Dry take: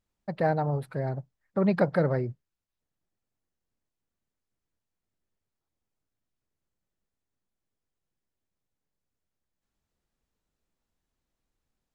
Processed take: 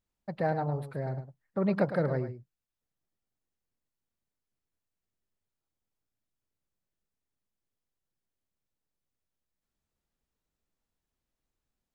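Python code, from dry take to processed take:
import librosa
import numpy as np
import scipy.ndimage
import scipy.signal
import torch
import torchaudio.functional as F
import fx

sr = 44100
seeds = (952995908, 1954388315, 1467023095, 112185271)

y = x + 10.0 ** (-11.0 / 20.0) * np.pad(x, (int(107 * sr / 1000.0), 0))[:len(x)]
y = F.gain(torch.from_numpy(y), -4.0).numpy()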